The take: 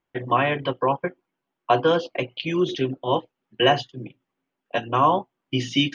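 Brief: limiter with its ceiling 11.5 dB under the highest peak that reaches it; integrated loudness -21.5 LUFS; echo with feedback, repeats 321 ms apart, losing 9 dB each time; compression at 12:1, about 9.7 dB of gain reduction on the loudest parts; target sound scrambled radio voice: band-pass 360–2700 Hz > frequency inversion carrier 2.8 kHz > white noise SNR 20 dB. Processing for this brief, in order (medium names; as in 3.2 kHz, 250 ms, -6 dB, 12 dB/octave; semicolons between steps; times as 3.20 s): compression 12:1, threshold -23 dBFS; peak limiter -23 dBFS; band-pass 360–2700 Hz; feedback delay 321 ms, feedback 35%, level -9 dB; frequency inversion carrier 2.8 kHz; white noise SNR 20 dB; trim +12.5 dB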